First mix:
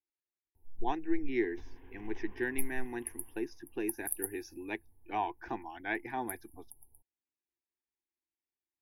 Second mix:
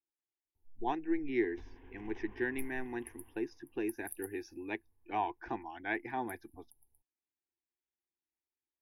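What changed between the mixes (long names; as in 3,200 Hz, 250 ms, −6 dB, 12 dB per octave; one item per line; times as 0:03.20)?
speech: add high-frequency loss of the air 77 metres
first sound −10.5 dB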